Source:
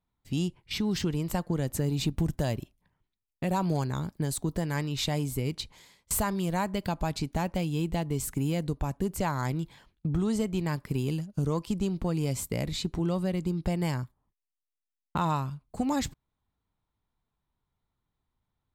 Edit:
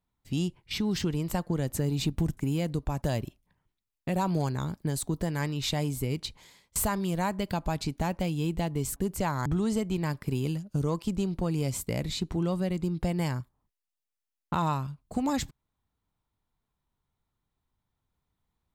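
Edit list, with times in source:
8.31–8.96 move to 2.37
9.46–10.09 cut

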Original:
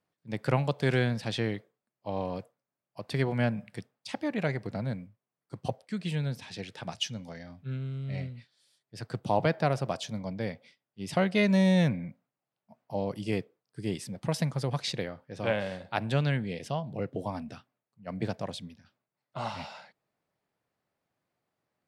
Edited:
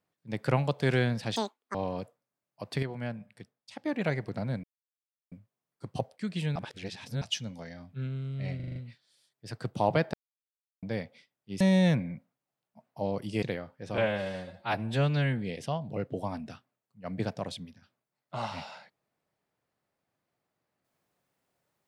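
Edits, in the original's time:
1.36–2.12 speed 197%
3.2–4.23 gain -8.5 dB
5.01 insert silence 0.68 s
6.25–6.91 reverse
8.25 stutter 0.04 s, 6 plays
9.63–10.32 mute
11.1–11.54 cut
13.36–14.92 cut
15.47–16.41 stretch 1.5×

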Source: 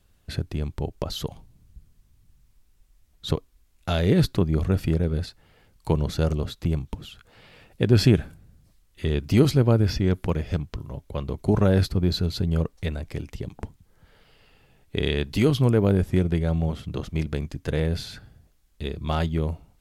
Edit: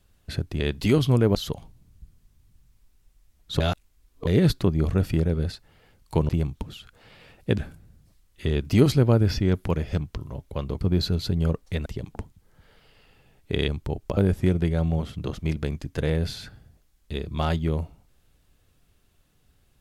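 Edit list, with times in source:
0.6–1.09 swap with 15.12–15.87
3.34–4.01 reverse
6.03–6.61 cut
7.9–8.17 cut
11.4–11.92 cut
12.97–13.3 cut

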